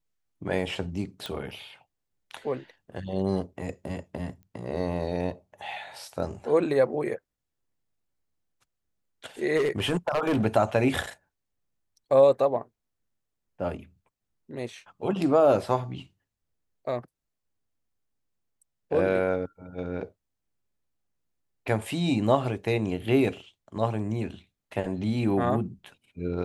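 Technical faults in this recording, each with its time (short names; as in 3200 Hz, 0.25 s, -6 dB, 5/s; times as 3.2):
1.26 pop -19 dBFS
4.43 pop -39 dBFS
9.56–10.46 clipped -20.5 dBFS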